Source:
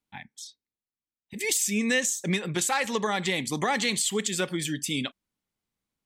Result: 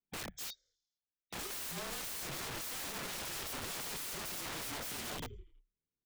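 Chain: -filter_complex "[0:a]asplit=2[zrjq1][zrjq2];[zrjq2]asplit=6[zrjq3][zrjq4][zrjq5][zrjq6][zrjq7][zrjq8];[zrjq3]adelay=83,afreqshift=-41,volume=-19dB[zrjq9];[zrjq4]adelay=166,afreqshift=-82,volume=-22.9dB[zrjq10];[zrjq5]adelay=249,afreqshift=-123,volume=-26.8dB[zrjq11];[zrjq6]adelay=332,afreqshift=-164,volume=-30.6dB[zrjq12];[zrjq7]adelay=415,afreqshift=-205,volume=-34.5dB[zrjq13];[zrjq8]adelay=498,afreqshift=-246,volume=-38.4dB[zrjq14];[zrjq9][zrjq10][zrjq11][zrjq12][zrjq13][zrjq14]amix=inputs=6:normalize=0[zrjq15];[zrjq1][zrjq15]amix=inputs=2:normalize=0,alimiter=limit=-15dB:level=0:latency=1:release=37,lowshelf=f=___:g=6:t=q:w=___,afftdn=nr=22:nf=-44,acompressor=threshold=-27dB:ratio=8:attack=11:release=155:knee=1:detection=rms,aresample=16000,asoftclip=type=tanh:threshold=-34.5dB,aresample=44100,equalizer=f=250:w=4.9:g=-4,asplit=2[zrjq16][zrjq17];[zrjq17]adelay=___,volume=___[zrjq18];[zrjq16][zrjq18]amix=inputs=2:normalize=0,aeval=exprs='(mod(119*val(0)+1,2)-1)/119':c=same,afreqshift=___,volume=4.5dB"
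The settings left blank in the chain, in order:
570, 3, 27, -2.5dB, -32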